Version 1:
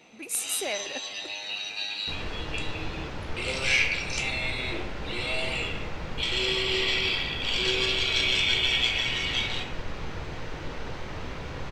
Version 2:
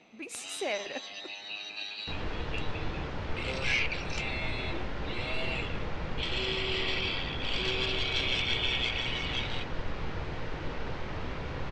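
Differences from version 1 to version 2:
first sound: send off
master: add high-frequency loss of the air 100 metres

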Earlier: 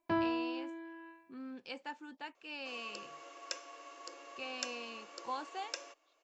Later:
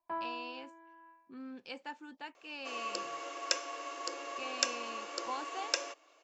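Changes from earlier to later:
first sound: add resonant band-pass 960 Hz, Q 2.2
second sound +9.5 dB

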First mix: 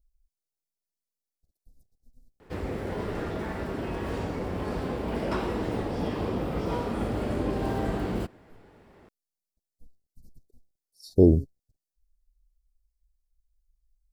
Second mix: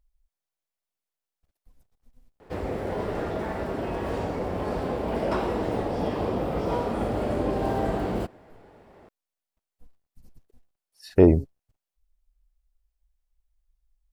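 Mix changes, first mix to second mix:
speech: remove inverse Chebyshev band-stop filter 1,100–2,800 Hz, stop band 40 dB
master: add parametric band 660 Hz +6.5 dB 1.2 octaves

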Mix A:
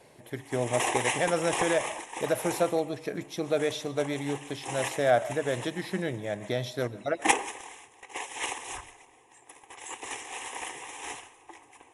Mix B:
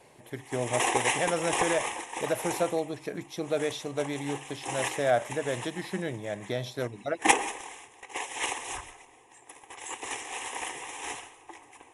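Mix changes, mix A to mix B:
speech: send off
background: send +10.5 dB

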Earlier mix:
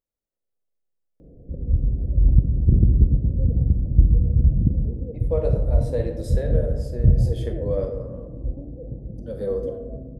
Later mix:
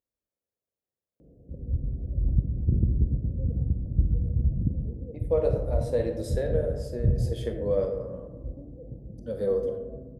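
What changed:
background −6.5 dB
master: add high-pass filter 49 Hz

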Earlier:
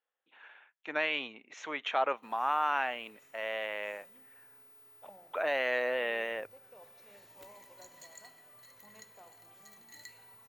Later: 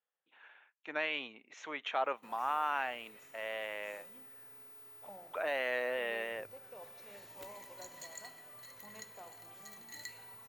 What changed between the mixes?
speech −4.0 dB
background +4.0 dB

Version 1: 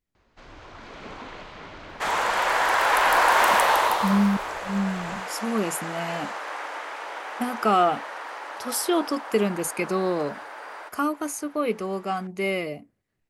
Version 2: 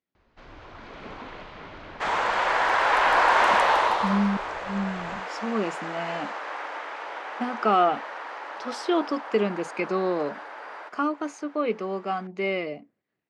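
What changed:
speech: add band-pass filter 200–6,300 Hz
master: add high-frequency loss of the air 110 metres

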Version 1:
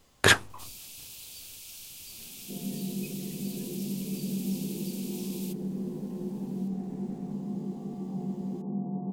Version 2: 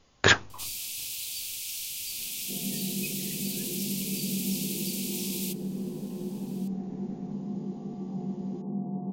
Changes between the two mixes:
speech: add linear-phase brick-wall low-pass 7,100 Hz
first sound +9.5 dB

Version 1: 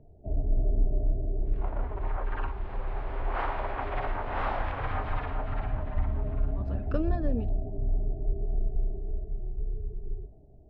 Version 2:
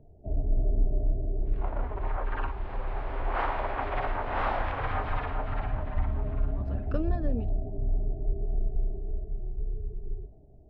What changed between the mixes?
second sound +5.0 dB
reverb: off

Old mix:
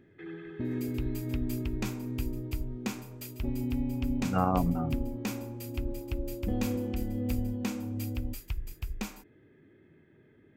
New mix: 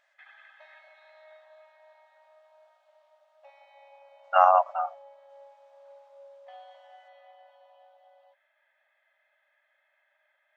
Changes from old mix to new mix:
speech +12.0 dB
second sound: muted
master: add linear-phase brick-wall high-pass 550 Hz

